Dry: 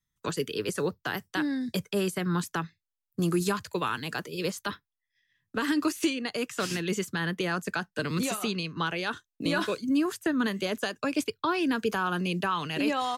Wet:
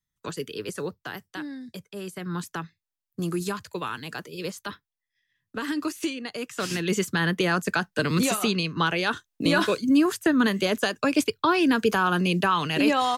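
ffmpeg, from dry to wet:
-af "volume=14.5dB,afade=t=out:st=0.8:d=1.1:silence=0.375837,afade=t=in:st=1.9:d=0.55:silence=0.354813,afade=t=in:st=6.46:d=0.62:silence=0.398107"

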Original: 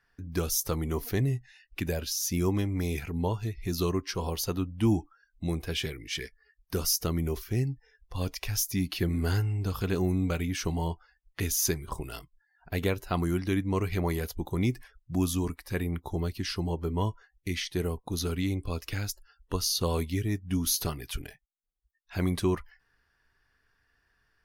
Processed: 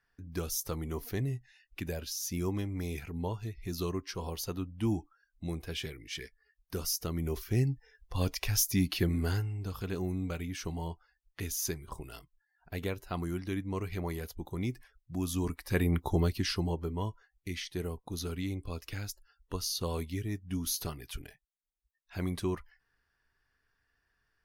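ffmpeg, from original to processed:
-af "volume=12.5dB,afade=t=in:st=7.11:d=0.58:silence=0.446684,afade=t=out:st=8.86:d=0.65:silence=0.398107,afade=t=in:st=15.22:d=0.8:silence=0.266073,afade=t=out:st=16.02:d=0.94:silence=0.298538"

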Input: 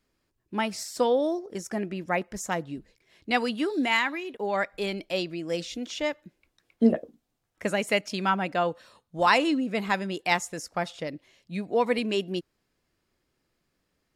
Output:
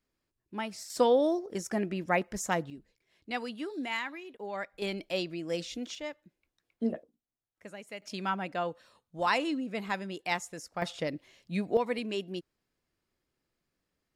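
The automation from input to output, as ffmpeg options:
-af "asetnsamples=n=441:p=0,asendcmd='0.9 volume volume -0.5dB;2.7 volume volume -10dB;4.82 volume volume -3.5dB;5.95 volume volume -10.5dB;7.03 volume volume -18.5dB;8.02 volume volume -7dB;10.82 volume volume 0.5dB;11.77 volume volume -7dB',volume=-8dB"

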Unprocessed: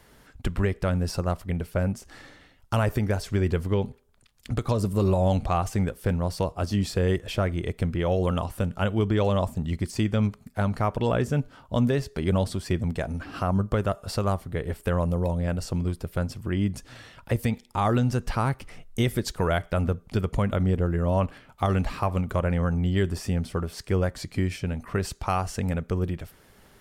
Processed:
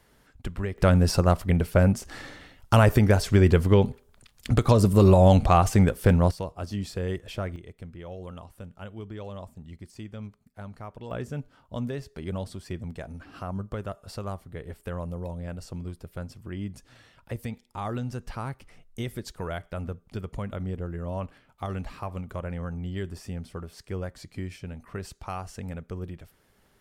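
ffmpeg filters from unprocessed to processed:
-af "asetnsamples=n=441:p=0,asendcmd='0.78 volume volume 6dB;6.31 volume volume -6.5dB;7.56 volume volume -15.5dB;11.11 volume volume -9dB',volume=-6dB"

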